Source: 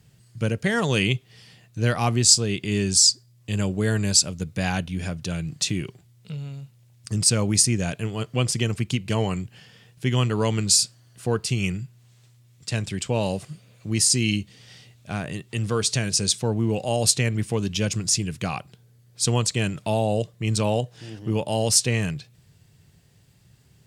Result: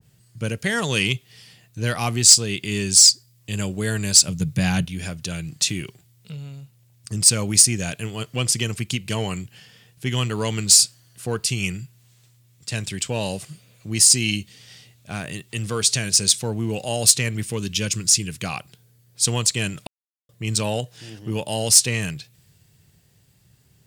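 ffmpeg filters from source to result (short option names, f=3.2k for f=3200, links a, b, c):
-filter_complex "[0:a]asettb=1/sr,asplit=3[a][b][c];[a]atrim=end=4.284[d];[b]atrim=start=4.28:end=4.85,asetpts=PTS-STARTPTS,afade=t=in:d=0.004:c=qsin,afade=t=out:st=0.566:d=0.004:c=qsin,equalizer=f=140:w=1.5:g=15[e];[c]atrim=start=4.846[f];[d][e]acrossfade=d=0.004:c1=hsin:c2=qsin[g];[g][f]acrossfade=d=0.004:c1=qsin:c2=hsin,asettb=1/sr,asplit=3[h][i][j];[h]atrim=end=17.484[k];[i]atrim=start=17.48:end=18.29,asetpts=PTS-STARTPTS,afade=t=in:d=0.004:c=qsin,afade=t=out:st=0.806:d=0.004:c=qsin,equalizer=f=730:t=o:w=0.35:g=-10.5[l];[j]atrim=start=18.286[m];[k][l]acrossfade=d=0.004:c1=hsin:c2=qsin[n];[n][m]acrossfade=d=0.004:c1=qsin:c2=hsin,asplit=3[o][p][q];[o]atrim=end=19.87,asetpts=PTS-STARTPTS,afade=t=out:st=19.866:d=0.004:c=hsin[r];[p]atrim=start=19.87:end=20.29,asetpts=PTS-STARTPTS,volume=0[s];[q]atrim=start=20.29,asetpts=PTS-STARTPTS,afade=t=in:d=0.004:c=hsin[t];[r][s][t]concat=n=3:v=0:a=1,highshelf=f=11k:g=10,acontrast=43,adynamicequalizer=threshold=0.0178:dfrequency=1500:dqfactor=0.7:tfrequency=1500:tqfactor=0.7:attack=5:release=100:ratio=0.375:range=3:mode=boostabove:tftype=highshelf,volume=-7.5dB"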